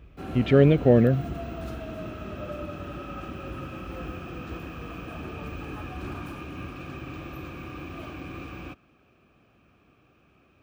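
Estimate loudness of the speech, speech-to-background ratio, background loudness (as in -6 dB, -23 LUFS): -21.0 LUFS, 16.5 dB, -37.5 LUFS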